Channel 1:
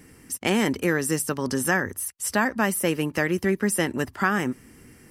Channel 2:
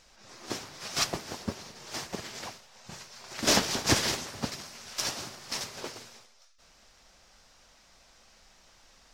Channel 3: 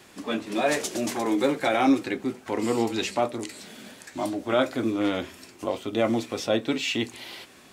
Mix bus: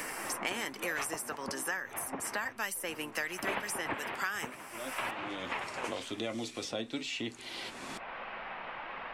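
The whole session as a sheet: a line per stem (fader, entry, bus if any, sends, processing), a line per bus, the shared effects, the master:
-3.0 dB, 0.00 s, no send, HPF 1000 Hz 6 dB/oct
-2.5 dB, 0.00 s, no send, steep low-pass 2600 Hz 36 dB/oct; bell 950 Hz +5.5 dB 1 oct
-10.5 dB, 0.25 s, no send, LPF 11000 Hz 24 dB/oct; low shelf 220 Hz +11.5 dB; auto duck -19 dB, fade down 1.50 s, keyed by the first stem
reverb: off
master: low shelf 310 Hz -7 dB; flange 1.1 Hz, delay 1.6 ms, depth 2.9 ms, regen +81%; three-band squash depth 100%

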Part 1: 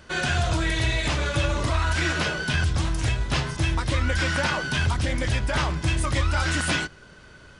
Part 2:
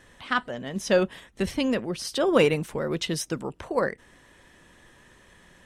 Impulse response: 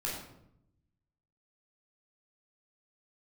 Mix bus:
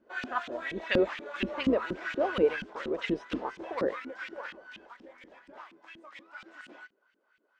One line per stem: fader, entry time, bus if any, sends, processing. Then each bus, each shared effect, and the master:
3.97 s -4 dB -> 4.57 s -14 dB, 0.00 s, no send, no echo send, elliptic band-pass 220–8000 Hz; short-mantissa float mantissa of 2-bit
-2.5 dB, 0.00 s, no send, echo send -19.5 dB, octaver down 2 oct, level -1 dB; low-pass opened by the level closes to 870 Hz, open at -16.5 dBFS; AGC gain up to 10.5 dB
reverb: off
echo: echo 0.618 s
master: bell 120 Hz -14 dB 1 oct; LFO band-pass saw up 4.2 Hz 220–3000 Hz

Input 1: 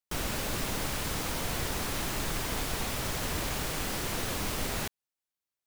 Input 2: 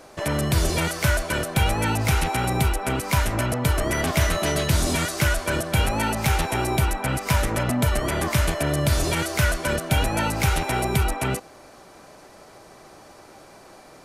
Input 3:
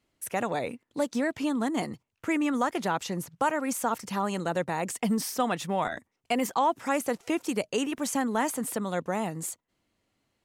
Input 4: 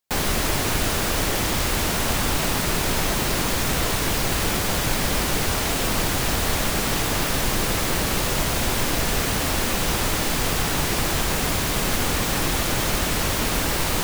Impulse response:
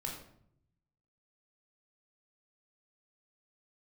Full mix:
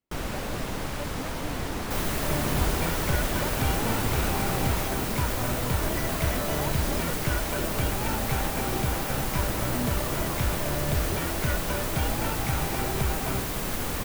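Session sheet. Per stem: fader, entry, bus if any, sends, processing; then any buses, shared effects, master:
+2.5 dB, 0.00 s, no send, dry
-7.0 dB, 2.05 s, no send, dry
-12.5 dB, 0.00 s, no send, dry
-7.0 dB, 1.80 s, no send, high shelf 8900 Hz +12 dB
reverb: off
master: high shelf 2600 Hz -8.5 dB

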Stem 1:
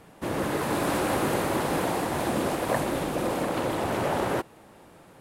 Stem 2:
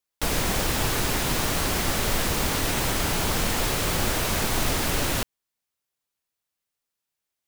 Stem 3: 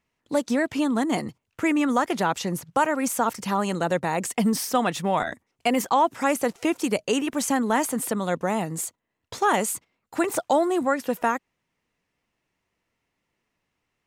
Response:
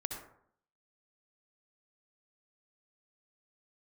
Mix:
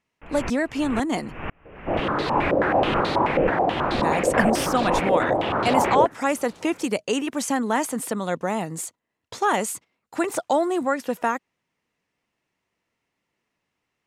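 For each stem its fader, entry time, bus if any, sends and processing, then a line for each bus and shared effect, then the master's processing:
+1.5 dB, 1.65 s, no send, stepped low-pass 9.3 Hz 540–4100 Hz
0.0 dB, 0.00 s, no send, elliptic low-pass 2700 Hz, stop band 40 dB; vocal rider; dB-ramp tremolo swelling 2 Hz, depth 37 dB
0.0 dB, 0.00 s, muted 1.49–4.01, no send, Bessel low-pass 11000 Hz, order 2; low shelf 63 Hz -11.5 dB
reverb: off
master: dry

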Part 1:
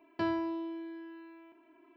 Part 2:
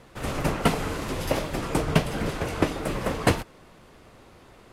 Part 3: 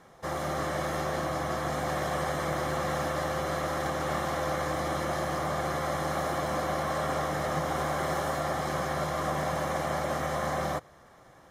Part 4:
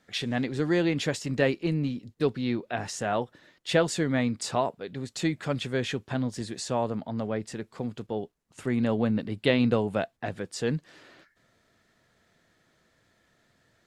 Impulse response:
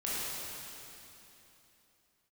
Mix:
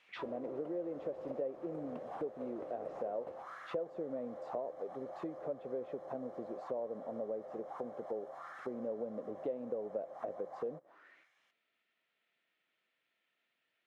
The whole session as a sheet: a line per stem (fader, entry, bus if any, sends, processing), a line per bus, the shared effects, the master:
-2.5 dB, 0.00 s, bus B, no send, dry
-3.5 dB, 0.00 s, bus A, no send, compressor, threshold -26 dBFS, peak gain reduction 11.5 dB
-6.5 dB, 0.00 s, bus B, no send, dry
+1.5 dB, 0.00 s, bus A, no send, HPF 230 Hz 12 dB/oct; tilt -4 dB/oct
bus A: 0.0 dB, notch 1700 Hz; compressor 2.5:1, threshold -23 dBFS, peak gain reduction 7.5 dB
bus B: 0.0 dB, high shelf 4300 Hz +10.5 dB; compressor, threshold -36 dBFS, peak gain reduction 7.5 dB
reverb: off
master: auto-wah 540–2800 Hz, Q 3.7, down, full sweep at -26.5 dBFS; compressor 2.5:1, threshold -39 dBFS, peak gain reduction 11 dB

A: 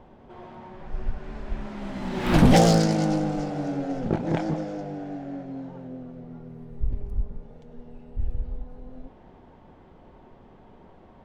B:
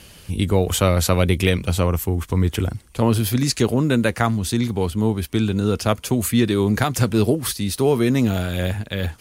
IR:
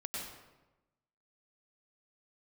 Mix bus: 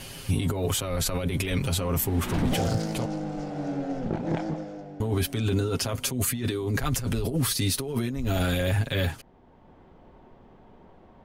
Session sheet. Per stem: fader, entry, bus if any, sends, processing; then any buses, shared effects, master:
-1.5 dB, 0.00 s, no send, auto duck -7 dB, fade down 0.70 s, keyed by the second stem
-3.0 dB, 0.00 s, muted 3.06–5, no send, comb 7.4 ms, depth 81%; negative-ratio compressor -23 dBFS, ratio -1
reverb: off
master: limiter -16.5 dBFS, peak gain reduction 8 dB

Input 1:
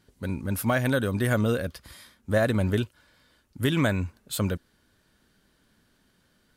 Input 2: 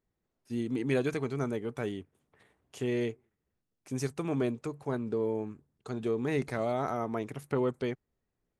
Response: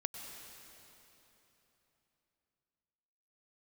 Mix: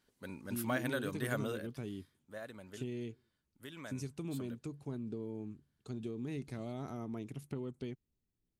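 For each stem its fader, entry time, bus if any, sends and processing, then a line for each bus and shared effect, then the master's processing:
1.46 s -9.5 dB -> 1.87 s -21 dB, 0.00 s, no send, Bessel high-pass 180 Hz, order 2; low shelf 390 Hz -8.5 dB
-5.5 dB, 0.00 s, no send, band shelf 950 Hz -9 dB 2.5 oct; compressor, threshold -34 dBFS, peak gain reduction 8.5 dB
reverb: off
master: low shelf 340 Hz +4 dB

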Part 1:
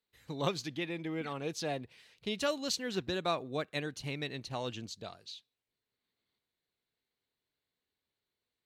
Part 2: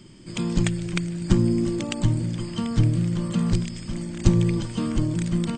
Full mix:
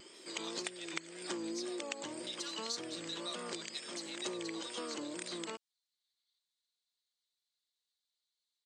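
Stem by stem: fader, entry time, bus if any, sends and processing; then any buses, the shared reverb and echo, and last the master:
-10.5 dB, 0.00 s, no send, HPF 1000 Hz; band shelf 5600 Hz +14 dB; comb 4.2 ms
0.0 dB, 0.00 s, no send, Chebyshev high-pass 420 Hz, order 3; wow and flutter 84 cents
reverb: off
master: compressor 2.5:1, threshold -41 dBFS, peak gain reduction 12 dB

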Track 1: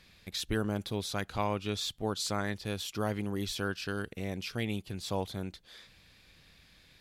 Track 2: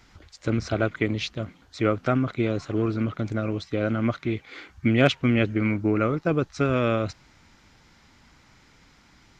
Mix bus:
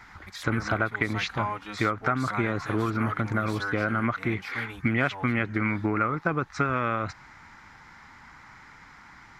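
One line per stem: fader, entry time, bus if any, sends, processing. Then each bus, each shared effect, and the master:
-3.0 dB, 0.00 s, no send, endless flanger 4.2 ms +1.9 Hz
-1.0 dB, 0.00 s, no send, bell 150 Hz +3 dB 1.8 oct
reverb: off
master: band shelf 1300 Hz +12.5 dB; compressor 5:1, threshold -22 dBFS, peak gain reduction 12.5 dB

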